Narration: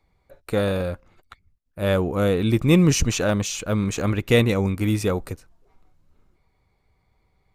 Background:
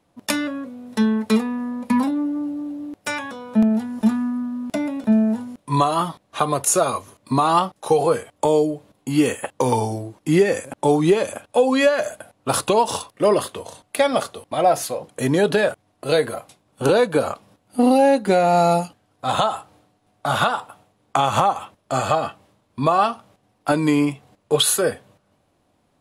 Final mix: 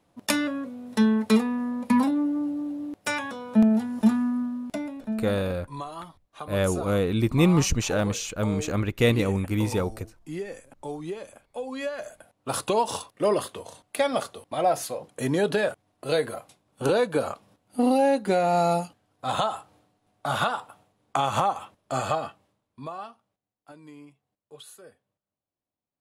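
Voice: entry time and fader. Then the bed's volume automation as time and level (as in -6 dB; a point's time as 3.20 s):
4.70 s, -3.5 dB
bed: 4.42 s -2 dB
5.42 s -18 dB
11.56 s -18 dB
12.75 s -6 dB
22.08 s -6 dB
23.55 s -29 dB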